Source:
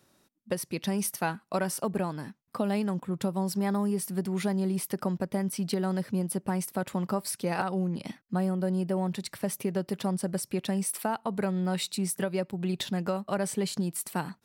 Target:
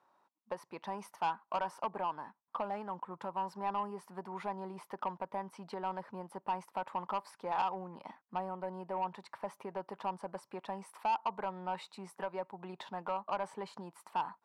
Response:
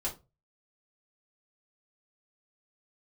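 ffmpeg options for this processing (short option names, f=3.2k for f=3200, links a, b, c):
-filter_complex "[0:a]asettb=1/sr,asplit=3[a][b][c];[a]atrim=end=2.624[d];[b]atrim=start=2.62:end=3.49,asetpts=PTS-STARTPTS,afade=t=in:d=0.004:c=qsin,afade=t=out:st=0.866:d=0.004:c=qsin,asoftclip=type=hard:threshold=-22dB[e];[c]atrim=start=3.486[f];[d][e]acrossfade=d=0.004:c1=hsin:c2=qsin[g];[g][f]acrossfade=d=0.004:c1=qsin:c2=hsin,bandpass=f=950:t=q:w=4.4:csg=0,asoftclip=type=tanh:threshold=-34dB,volume=7.5dB"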